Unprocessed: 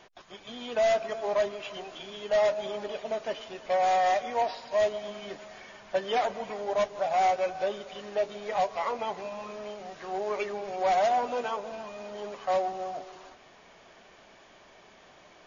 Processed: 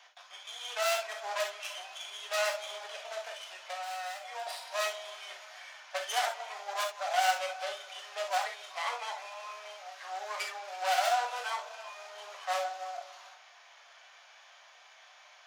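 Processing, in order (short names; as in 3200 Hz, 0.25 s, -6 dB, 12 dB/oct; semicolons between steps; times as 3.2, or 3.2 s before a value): tracing distortion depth 0.19 ms; Bessel high-pass 1100 Hz, order 8; 3.24–4.47 compressor 6:1, threshold -40 dBFS, peak gain reduction 12 dB; 8.27–8.7 reverse; reverb, pre-delay 3 ms, DRR 2 dB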